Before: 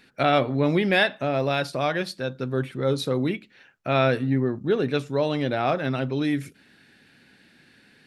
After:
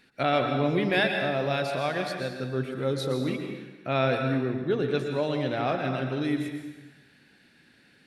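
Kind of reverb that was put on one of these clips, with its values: plate-style reverb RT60 1.2 s, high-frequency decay 0.95×, pre-delay 0.105 s, DRR 4 dB; gain -4.5 dB

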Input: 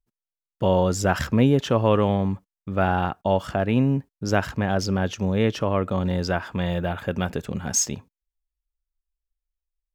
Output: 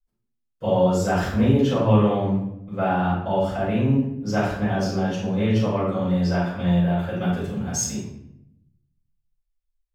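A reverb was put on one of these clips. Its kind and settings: shoebox room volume 200 m³, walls mixed, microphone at 5.1 m; gain -15.5 dB

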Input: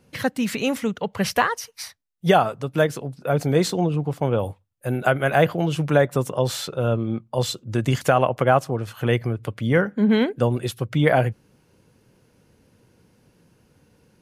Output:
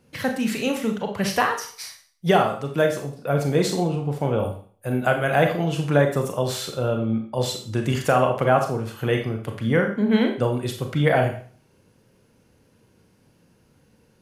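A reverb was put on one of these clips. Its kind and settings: Schroeder reverb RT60 0.45 s, combs from 28 ms, DRR 3.5 dB; gain -2 dB

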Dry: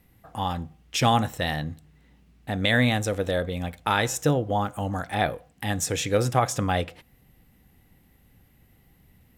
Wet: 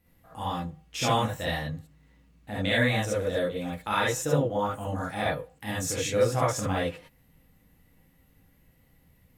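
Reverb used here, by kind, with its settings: non-linear reverb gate 90 ms rising, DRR -7 dB; gain -10 dB

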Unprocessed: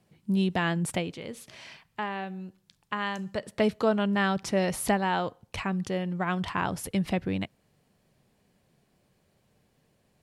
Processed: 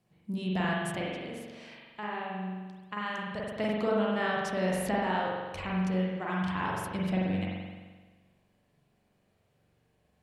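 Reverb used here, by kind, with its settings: spring tank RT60 1.4 s, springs 43 ms, chirp 60 ms, DRR -4.5 dB; gain -8 dB

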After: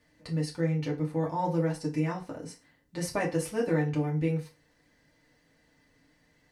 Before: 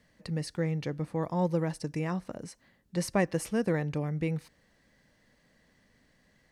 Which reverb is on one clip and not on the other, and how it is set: FDN reverb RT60 0.31 s, low-frequency decay 0.85×, high-frequency decay 0.85×, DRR -3.5 dB; gain -4.5 dB

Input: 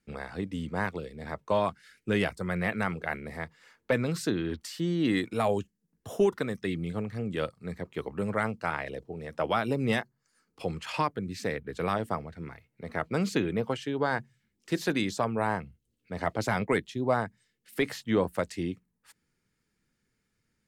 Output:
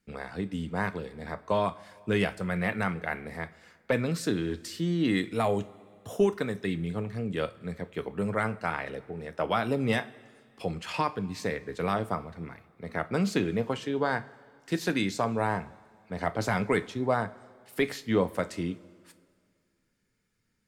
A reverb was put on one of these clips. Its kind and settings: two-slope reverb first 0.28 s, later 2.1 s, from -18 dB, DRR 10 dB

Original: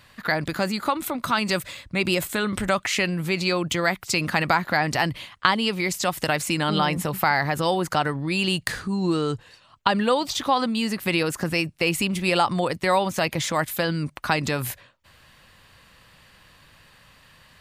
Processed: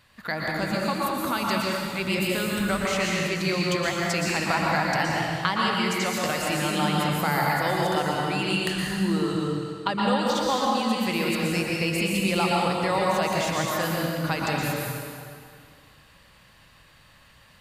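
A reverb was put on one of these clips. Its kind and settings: plate-style reverb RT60 2.2 s, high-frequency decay 0.85×, pre-delay 0.105 s, DRR -3.5 dB; gain -6.5 dB

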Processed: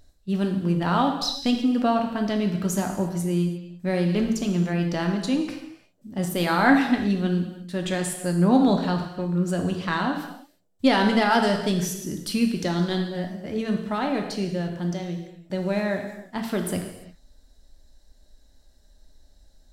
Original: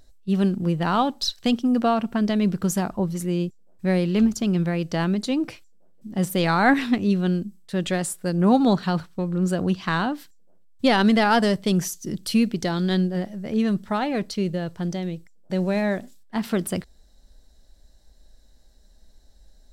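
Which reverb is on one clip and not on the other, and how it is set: non-linear reverb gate 0.37 s falling, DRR 3 dB; gain -2.5 dB

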